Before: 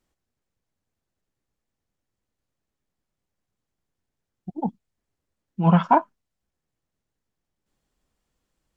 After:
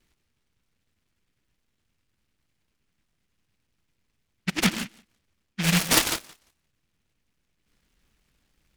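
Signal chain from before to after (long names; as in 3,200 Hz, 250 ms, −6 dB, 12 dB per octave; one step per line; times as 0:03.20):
high shelf with overshoot 1,900 Hz −13.5 dB, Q 1.5
reversed playback
downward compressor 16 to 1, threshold −25 dBFS, peak gain reduction 17 dB
reversed playback
feedback echo with a high-pass in the loop 174 ms, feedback 16%, high-pass 280 Hz, level −22 dB
reverb whose tail is shaped and stops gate 190 ms rising, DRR 8 dB
short delay modulated by noise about 2,200 Hz, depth 0.46 ms
level +7.5 dB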